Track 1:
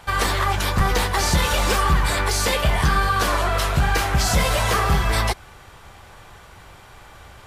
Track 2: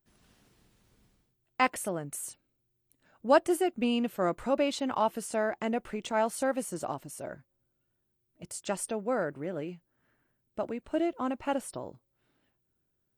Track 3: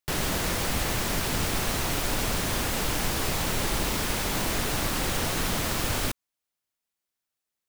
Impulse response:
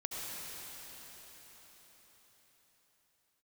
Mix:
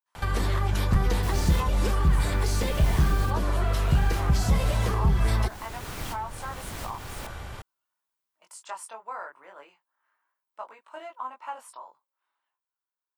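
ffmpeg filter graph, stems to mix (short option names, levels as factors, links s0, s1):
-filter_complex "[0:a]lowshelf=f=340:g=5.5,acompressor=threshold=0.0141:ratio=1.5,adelay=150,volume=1.33[s0];[1:a]dynaudnorm=f=300:g=9:m=2.51,flanger=delay=18.5:depth=3.9:speed=0.28,highpass=f=1000:t=q:w=5.2,volume=0.299,asplit=2[s1][s2];[2:a]adelay=1150,volume=0.596[s3];[s2]apad=whole_len=389695[s4];[s3][s4]sidechaincompress=threshold=0.01:ratio=12:attack=6.3:release=714[s5];[s0][s1][s5]amix=inputs=3:normalize=0,acrossover=split=460[s6][s7];[s7]acompressor=threshold=0.0251:ratio=6[s8];[s6][s8]amix=inputs=2:normalize=0"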